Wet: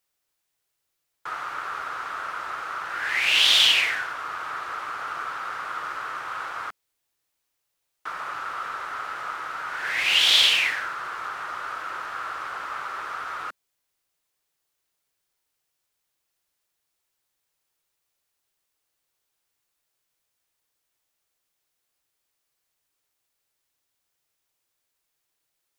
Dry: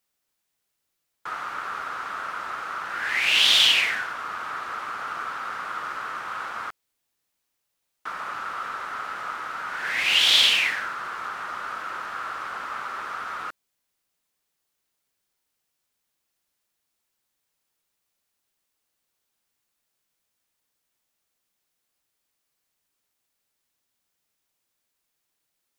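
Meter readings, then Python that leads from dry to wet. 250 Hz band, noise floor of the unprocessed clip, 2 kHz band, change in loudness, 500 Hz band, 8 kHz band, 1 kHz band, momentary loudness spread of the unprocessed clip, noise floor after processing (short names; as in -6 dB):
-2.5 dB, -79 dBFS, 0.0 dB, 0.0 dB, 0.0 dB, 0.0 dB, 0.0 dB, 17 LU, -79 dBFS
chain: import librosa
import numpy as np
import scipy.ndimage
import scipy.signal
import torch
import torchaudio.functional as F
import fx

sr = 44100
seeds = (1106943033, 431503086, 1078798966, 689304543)

y = fx.peak_eq(x, sr, hz=220.0, db=-14.0, octaves=0.28)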